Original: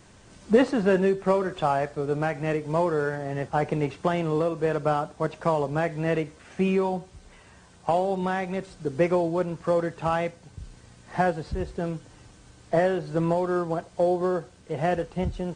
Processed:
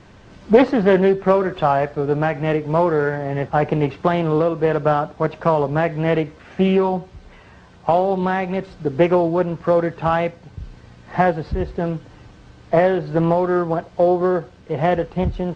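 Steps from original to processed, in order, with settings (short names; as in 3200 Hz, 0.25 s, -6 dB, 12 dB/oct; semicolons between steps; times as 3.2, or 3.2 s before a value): air absorption 160 m; Doppler distortion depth 0.26 ms; gain +7.5 dB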